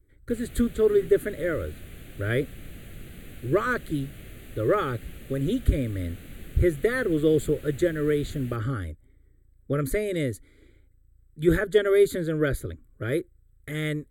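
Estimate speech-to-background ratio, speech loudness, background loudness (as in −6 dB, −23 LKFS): 18.5 dB, −26.5 LKFS, −45.0 LKFS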